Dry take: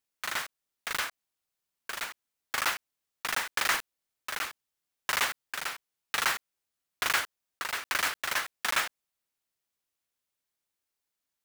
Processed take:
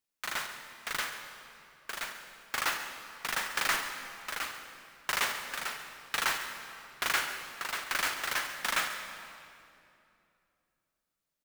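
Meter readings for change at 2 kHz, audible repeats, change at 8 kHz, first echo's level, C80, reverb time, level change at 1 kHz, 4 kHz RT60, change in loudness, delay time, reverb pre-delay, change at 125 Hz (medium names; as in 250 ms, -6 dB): -1.5 dB, 1, -1.5 dB, -15.0 dB, 7.0 dB, 2.7 s, -1.5 dB, 2.0 s, -2.0 dB, 138 ms, 40 ms, 0.0 dB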